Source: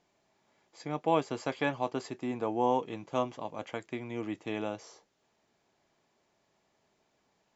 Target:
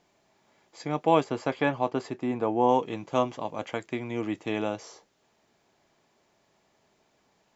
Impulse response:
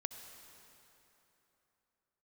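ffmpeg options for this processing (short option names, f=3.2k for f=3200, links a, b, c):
-filter_complex "[0:a]asettb=1/sr,asplit=3[a][b][c];[a]atrim=end=1.244[d];[b]atrim=start=1.24:end=2.69,asetpts=PTS-STARTPTS,afade=t=in:d=0.004:c=qsin,afade=t=out:st=1.446:d=0.004:c=qsin,highshelf=f=3.7k:g=-9[e];[c]atrim=start=2.686[f];[d][e]acrossfade=d=0.004:c1=hsin:c2=qsin[g];[g][f]acrossfade=d=0.004:c1=qsin:c2=hsin,volume=5.5dB"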